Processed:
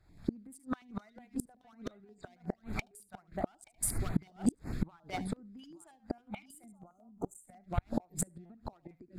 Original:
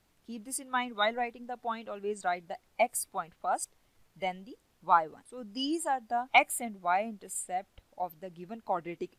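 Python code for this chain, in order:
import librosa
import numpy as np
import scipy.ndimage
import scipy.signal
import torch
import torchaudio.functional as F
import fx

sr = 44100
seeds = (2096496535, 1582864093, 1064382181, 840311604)

y = fx.wiener(x, sr, points=15)
y = fx.recorder_agc(y, sr, target_db=-16.0, rise_db_per_s=66.0, max_gain_db=30)
y = fx.clip_asym(y, sr, top_db=-9.5, bottom_db=-4.5)
y = fx.peak_eq(y, sr, hz=490.0, db=-10.0, octaves=0.73)
y = y + 10.0 ** (-11.5 / 20.0) * np.pad(y, (int(875 * sr / 1000.0), 0))[:len(y)]
y = fx.spec_erase(y, sr, start_s=6.71, length_s=0.73, low_hz=1400.0, high_hz=6000.0)
y = y + 10.0 ** (-16.0 / 20.0) * np.pad(y, (int(73 * sr / 1000.0), 0))[:len(y)]
y = fx.gate_flip(y, sr, shuts_db=-22.0, range_db=-34)
y = fx.peak_eq(y, sr, hz=1000.0, db=-10.5, octaves=1.2)
y = fx.buffer_glitch(y, sr, at_s=(8.45,), block=256, repeats=7)
y = fx.filter_held_notch(y, sr, hz=11.0, low_hz=220.0, high_hz=5400.0)
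y = F.gain(torch.from_numpy(y), 7.5).numpy()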